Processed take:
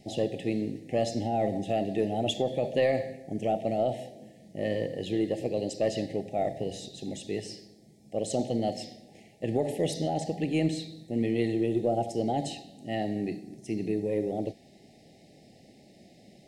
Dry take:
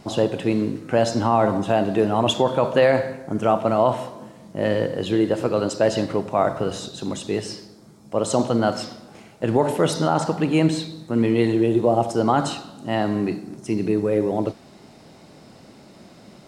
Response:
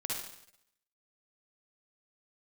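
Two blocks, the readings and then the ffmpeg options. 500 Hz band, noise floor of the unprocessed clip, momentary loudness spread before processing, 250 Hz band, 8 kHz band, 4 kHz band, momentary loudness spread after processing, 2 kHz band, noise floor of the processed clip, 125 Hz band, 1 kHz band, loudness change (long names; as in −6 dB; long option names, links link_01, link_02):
−8.5 dB, −48 dBFS, 10 LU, −8.5 dB, −8.5 dB, −8.5 dB, 11 LU, −11.0 dB, −57 dBFS, −8.5 dB, −11.5 dB, −9.0 dB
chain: -af "asuperstop=centerf=1200:order=20:qfactor=1.3,aeval=exprs='0.473*(cos(1*acos(clip(val(0)/0.473,-1,1)))-cos(1*PI/2))+0.0075*(cos(4*acos(clip(val(0)/0.473,-1,1)))-cos(4*PI/2))':channel_layout=same,volume=-8.5dB"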